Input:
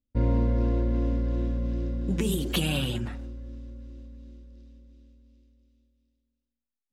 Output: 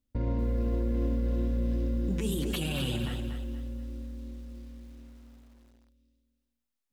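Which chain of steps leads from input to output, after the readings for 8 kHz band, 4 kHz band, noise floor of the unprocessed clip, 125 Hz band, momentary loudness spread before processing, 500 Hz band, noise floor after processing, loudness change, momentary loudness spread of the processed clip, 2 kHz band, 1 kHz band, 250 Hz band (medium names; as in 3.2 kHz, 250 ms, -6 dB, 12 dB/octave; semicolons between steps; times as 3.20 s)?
-4.0 dB, -4.5 dB, under -85 dBFS, -3.5 dB, 19 LU, -3.0 dB, -83 dBFS, -4.0 dB, 16 LU, -4.5 dB, -5.0 dB, -2.5 dB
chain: in parallel at +1 dB: compression, threshold -38 dBFS, peak gain reduction 17 dB; on the sum: peak limiter -19.5 dBFS, peak gain reduction 8.5 dB; bit-crushed delay 238 ms, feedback 35%, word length 9-bit, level -7 dB; trim -3 dB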